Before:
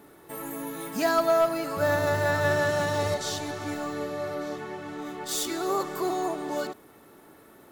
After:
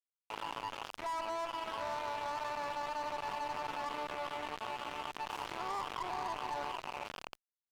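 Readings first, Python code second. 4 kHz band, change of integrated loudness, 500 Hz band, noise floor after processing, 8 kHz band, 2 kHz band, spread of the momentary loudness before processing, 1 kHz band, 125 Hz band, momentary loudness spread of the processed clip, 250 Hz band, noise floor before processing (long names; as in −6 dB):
−8.5 dB, −11.5 dB, −17.0 dB, below −85 dBFS, −18.0 dB, −12.0 dB, 13 LU, −5.5 dB, −22.5 dB, 5 LU, −19.0 dB, −53 dBFS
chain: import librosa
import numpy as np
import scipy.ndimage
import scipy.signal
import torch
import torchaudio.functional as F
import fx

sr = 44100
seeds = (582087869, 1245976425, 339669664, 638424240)

y = fx.tracing_dist(x, sr, depth_ms=0.46)
y = fx.bandpass_q(y, sr, hz=960.0, q=11.0)
y = fx.echo_diffused(y, sr, ms=452, feedback_pct=44, wet_db=-9.0)
y = fx.rider(y, sr, range_db=4, speed_s=0.5)
y = np.sign(y) * np.maximum(np.abs(y) - 10.0 ** (-47.0 / 20.0), 0.0)
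y = fx.wow_flutter(y, sr, seeds[0], rate_hz=2.1, depth_cents=20.0)
y = fx.tube_stage(y, sr, drive_db=41.0, bias=0.35)
y = fx.env_flatten(y, sr, amount_pct=70)
y = y * librosa.db_to_amplitude(7.0)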